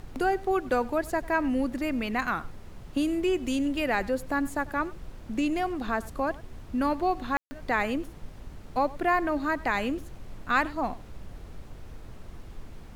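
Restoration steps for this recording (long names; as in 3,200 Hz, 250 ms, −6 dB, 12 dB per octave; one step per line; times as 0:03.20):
ambience match 0:07.37–0:07.51
noise reduction from a noise print 30 dB
echo removal 97 ms −20.5 dB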